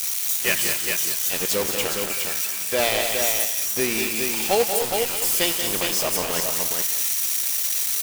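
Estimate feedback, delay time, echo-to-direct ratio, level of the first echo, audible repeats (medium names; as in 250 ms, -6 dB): no regular repeats, 88 ms, -2.0 dB, -15.0 dB, 5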